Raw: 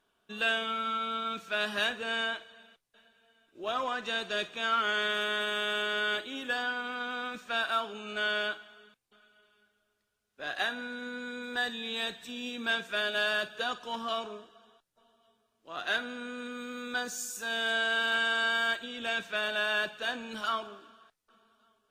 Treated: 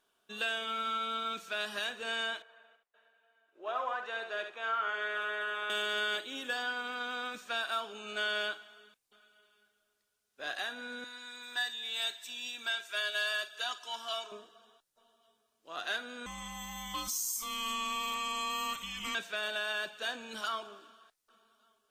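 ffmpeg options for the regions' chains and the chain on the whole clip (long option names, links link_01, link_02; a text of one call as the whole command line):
ffmpeg -i in.wav -filter_complex "[0:a]asettb=1/sr,asplit=3[link_01][link_02][link_03];[link_01]atrim=end=2.424[link_04];[link_02]atrim=start=2.42:end=5.7,asetpts=PTS-STARTPTS,afade=type=in:duration=0.004:curve=qsin,afade=type=out:start_time=3.276:duration=0.004:curve=qsin,acrossover=split=400 2200:gain=0.126 1 0.126[link_05][link_06][link_07];[link_05][link_06][link_07]amix=inputs=3:normalize=0,aecho=1:1:71:0.447,atrim=end_sample=144648[link_08];[link_03]atrim=start=5.696[link_09];[link_04][link_08]acrossfade=duration=0.004:curve1=hsin:curve2=qsin[link_10];[link_10][link_09]acrossfade=duration=0.004:curve1=qsin:curve2=hsin,asettb=1/sr,asplit=3[link_11][link_12][link_13];[link_11]atrim=end=11.044[link_14];[link_12]atrim=start=11.04:end=14.32,asetpts=PTS-STARTPTS,afade=type=in:duration=0.004:curve=qsin,afade=type=out:start_time=3.276:duration=0.004:curve=qsin,highpass=frequency=1300:poles=1,aecho=1:1:3:0.55,atrim=end_sample=144648[link_15];[link_13]atrim=start=14.316[link_16];[link_14][link_15]acrossfade=duration=0.004:curve1=hsin:curve2=qsin[link_17];[link_17][link_16]acrossfade=duration=0.004:curve1=qsin:curve2=hsin,asettb=1/sr,asplit=3[link_18][link_19][link_20];[link_18]atrim=end=16.264[link_21];[link_19]atrim=start=16.26:end=19.15,asetpts=PTS-STARTPTS,afade=type=in:duration=0.004:curve=qsin,afade=type=out:start_time=2.886:duration=0.004:curve=qsin,aemphasis=mode=production:type=50kf,acompressor=threshold=-34dB:ratio=2:attack=3.2:release=140:knee=1:detection=peak,afreqshift=-440[link_22];[link_20]atrim=start=19.146[link_23];[link_21][link_22]acrossfade=duration=0.004:curve1=hsin:curve2=qsin[link_24];[link_24][link_23]acrossfade=duration=0.004:curve1=qsin:curve2=hsin,bass=frequency=250:gain=-7,treble=frequency=4000:gain=6,alimiter=limit=-21.5dB:level=0:latency=1:release=307,volume=-2dB" out.wav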